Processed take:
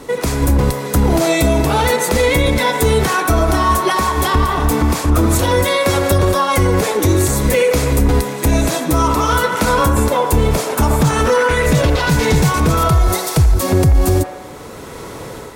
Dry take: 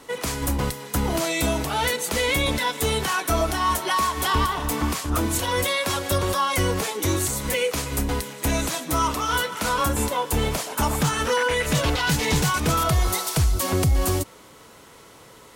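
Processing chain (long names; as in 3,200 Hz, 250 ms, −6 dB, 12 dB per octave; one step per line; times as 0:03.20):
in parallel at +2 dB: downward compressor, threshold −32 dBFS, peak gain reduction 15 dB
on the sum: low-shelf EQ 240 Hz +10 dB
automatic gain control gain up to 6 dB
parametric band 420 Hz +5 dB 1.3 octaves
notch filter 3,000 Hz, Q 16
on a send: delay with a band-pass on its return 85 ms, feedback 63%, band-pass 1,100 Hz, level −5 dB
on the sum: brickwall limiter −5 dBFS, peak gain reduction 5.5 dB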